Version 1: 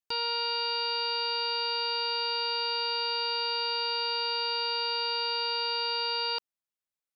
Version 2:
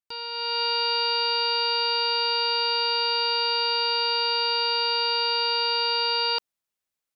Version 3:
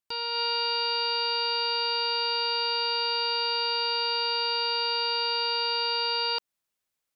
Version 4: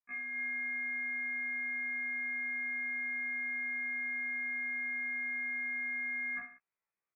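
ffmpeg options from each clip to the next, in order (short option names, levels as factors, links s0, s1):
-af "dynaudnorm=f=310:g=3:m=3.55,volume=0.562"
-af "alimiter=limit=0.0841:level=0:latency=1:release=162,volume=1.33"
-af "aecho=1:1:30|63|99.3|139.2|183.2:0.631|0.398|0.251|0.158|0.1,lowpass=f=2200:t=q:w=0.5098,lowpass=f=2200:t=q:w=0.6013,lowpass=f=2200:t=q:w=0.9,lowpass=f=2200:t=q:w=2.563,afreqshift=-2600,afftfilt=real='re*1.73*eq(mod(b,3),0)':imag='im*1.73*eq(mod(b,3),0)':win_size=2048:overlap=0.75,volume=0.708"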